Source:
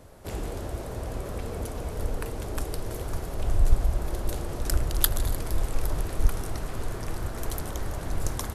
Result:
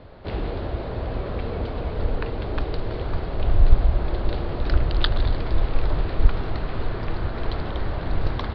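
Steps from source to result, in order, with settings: steep low-pass 4.5 kHz 72 dB/octave; trim +5.5 dB

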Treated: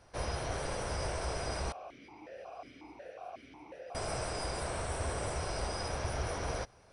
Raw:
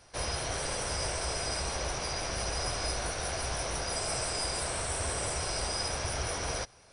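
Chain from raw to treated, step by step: treble shelf 2.3 kHz -11 dB; 1.72–3.95 s: stepped vowel filter 5.5 Hz

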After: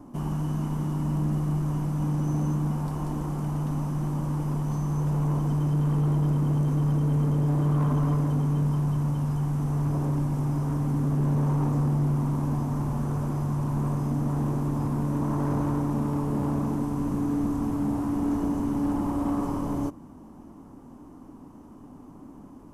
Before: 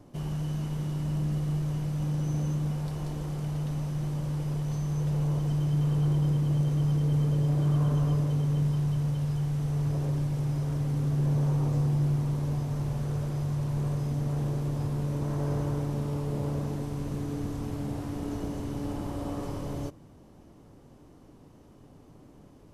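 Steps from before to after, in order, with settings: graphic EQ 125/250/500/1000/2000/4000 Hz -5/+10/-6/+9/-4/-9 dB; in parallel at -6.5 dB: wavefolder -24.5 dBFS

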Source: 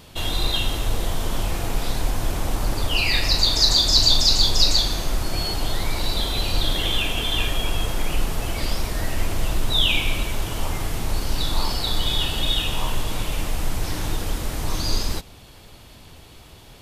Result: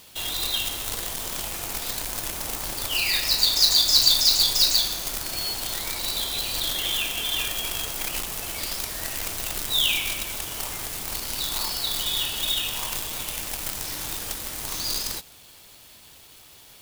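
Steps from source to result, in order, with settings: companded quantiser 4-bit; tilt EQ +2.5 dB/octave; trim -6.5 dB

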